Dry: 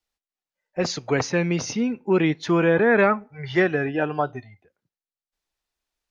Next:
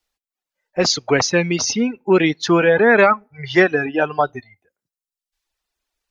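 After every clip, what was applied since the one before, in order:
parametric band 120 Hz −4.5 dB 1.9 octaves
reverb reduction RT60 1 s
dynamic equaliser 5,000 Hz, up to +6 dB, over −45 dBFS, Q 1.4
level +7 dB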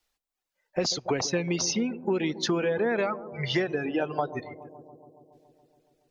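dynamic equaliser 1,500 Hz, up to −6 dB, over −28 dBFS, Q 0.98
downward compressor 5 to 1, threshold −25 dBFS, peak gain reduction 14 dB
bucket-brigade delay 140 ms, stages 1,024, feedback 75%, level −15 dB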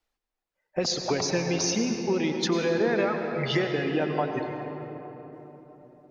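on a send at −4 dB: convolution reverb RT60 4.0 s, pre-delay 88 ms
on the sum: one half of a high-frequency compander decoder only

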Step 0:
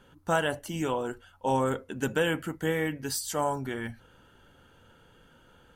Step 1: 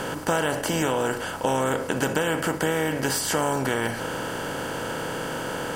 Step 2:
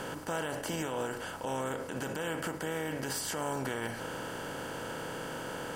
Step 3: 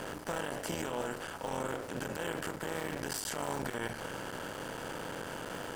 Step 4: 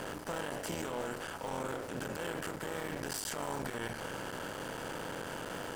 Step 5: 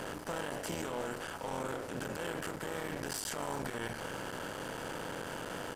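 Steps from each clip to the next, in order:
compressor on every frequency bin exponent 0.4; downward compressor 5 to 1, threshold −24 dBFS, peak gain reduction 7 dB; level +4 dB
brickwall limiter −15.5 dBFS, peak gain reduction 7.5 dB; level −9 dB
sub-harmonics by changed cycles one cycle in 3, muted
soft clipping −31 dBFS, distortion −15 dB; level +1 dB
downsampling to 32,000 Hz

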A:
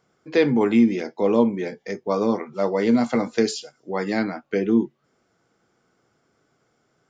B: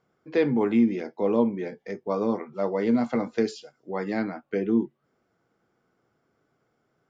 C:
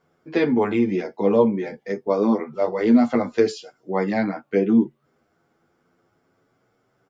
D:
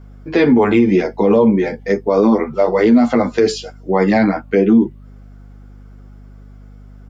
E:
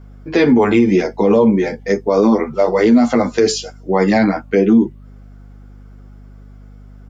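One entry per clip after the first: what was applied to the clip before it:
low-pass filter 2,300 Hz 6 dB per octave; level −4 dB
barber-pole flanger 9.3 ms +0.35 Hz; level +8.5 dB
mains hum 50 Hz, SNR 27 dB; boost into a limiter +13.5 dB; level −3 dB
dynamic equaliser 6,400 Hz, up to +8 dB, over −49 dBFS, Q 1.5

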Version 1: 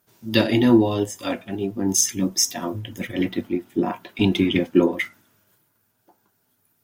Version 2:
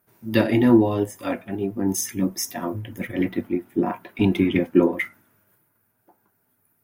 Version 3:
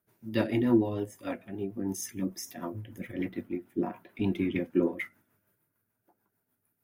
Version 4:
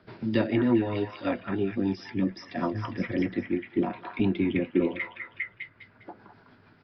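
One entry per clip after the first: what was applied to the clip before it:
flat-topped bell 4,800 Hz −9.5 dB
rotating-speaker cabinet horn 6.7 Hz; level −7.5 dB
echo through a band-pass that steps 202 ms, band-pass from 1,300 Hz, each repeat 0.7 octaves, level −4 dB; downsampling to 11,025 Hz; multiband upward and downward compressor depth 70%; level +4 dB

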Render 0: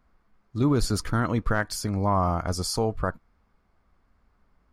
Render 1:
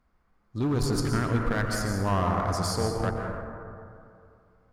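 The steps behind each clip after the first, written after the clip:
hard clipping −18 dBFS, distortion −15 dB
dense smooth reverb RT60 2.5 s, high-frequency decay 0.3×, pre-delay 105 ms, DRR 0.5 dB
harmonic generator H 4 −22 dB, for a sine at −10.5 dBFS
level −3.5 dB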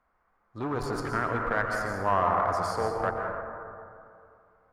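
three-way crossover with the lows and the highs turned down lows −15 dB, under 490 Hz, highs −16 dB, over 2,100 Hz
level +5 dB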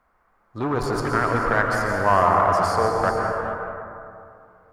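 reverb whose tail is shaped and stops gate 470 ms rising, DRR 7 dB
level +7 dB

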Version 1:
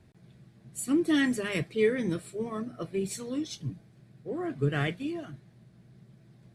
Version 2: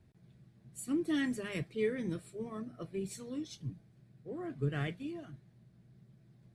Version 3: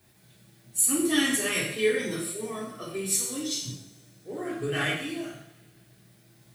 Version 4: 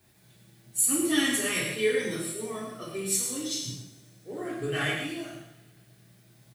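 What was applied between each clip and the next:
low-shelf EQ 200 Hz +5.5 dB; level −9 dB
RIAA equalisation recording; coupled-rooms reverb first 0.7 s, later 2.9 s, from −27 dB, DRR −5.5 dB; level +5.5 dB
single-tap delay 108 ms −8 dB; level −1.5 dB

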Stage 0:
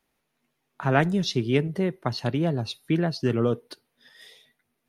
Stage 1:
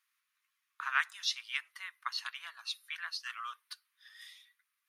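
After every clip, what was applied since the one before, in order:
Chebyshev high-pass filter 1,100 Hz, order 5
level −2 dB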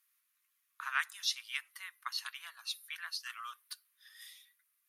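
parametric band 13,000 Hz +14.5 dB 1.2 octaves
level −3.5 dB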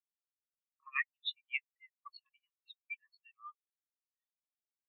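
phaser with its sweep stopped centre 1,500 Hz, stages 6
every bin expanded away from the loudest bin 4 to 1
level +1.5 dB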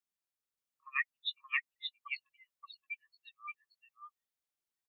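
single-tap delay 575 ms −3.5 dB
level +1 dB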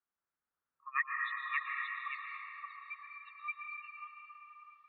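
low-pass filter sweep 1,400 Hz → 3,500 Hz, 0:02.76–0:04.42
dense smooth reverb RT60 4.3 s, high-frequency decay 0.5×, pre-delay 105 ms, DRR −1 dB

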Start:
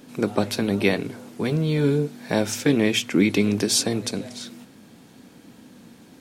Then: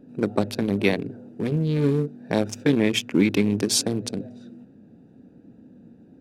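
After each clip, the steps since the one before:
adaptive Wiener filter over 41 samples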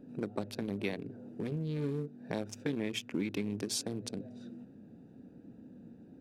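downward compressor 2 to 1, threshold −37 dBFS, peak gain reduction 13 dB
level −3.5 dB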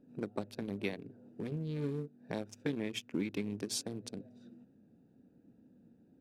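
expander for the loud parts 1.5 to 1, over −51 dBFS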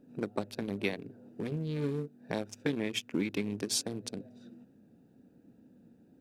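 low-shelf EQ 490 Hz −3.5 dB
level +6 dB

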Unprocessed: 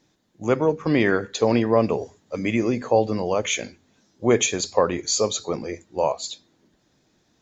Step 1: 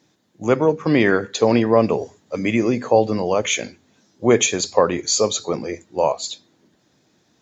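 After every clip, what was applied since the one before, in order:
high-pass filter 90 Hz
level +3.5 dB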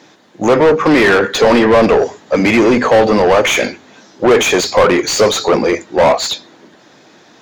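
mid-hump overdrive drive 30 dB, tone 1,900 Hz, clips at −1 dBFS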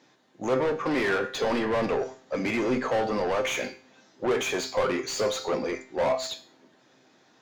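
tuned comb filter 130 Hz, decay 0.44 s, harmonics all, mix 70%
level −8 dB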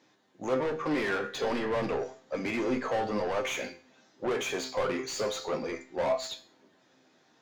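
flanger 0.31 Hz, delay 9.3 ms, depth 6.8 ms, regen +62%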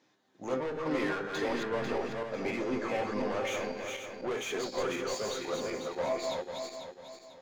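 feedback delay that plays each chunk backwards 248 ms, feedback 59%, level −3 dB
level −4.5 dB

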